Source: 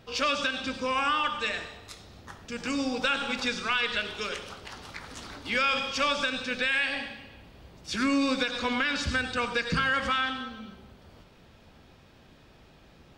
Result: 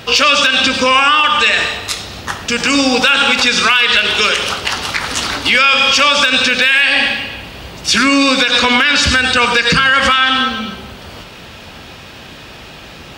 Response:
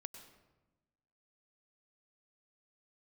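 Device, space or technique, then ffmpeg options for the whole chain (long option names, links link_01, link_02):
mastering chain: -af "highpass=40,equalizer=frequency=2800:width_type=o:width=0.27:gain=3.5,acompressor=threshold=-31dB:ratio=2,tiltshelf=frequency=810:gain=-4,asoftclip=type=hard:threshold=-19dB,alimiter=level_in=23dB:limit=-1dB:release=50:level=0:latency=1,volume=-1dB"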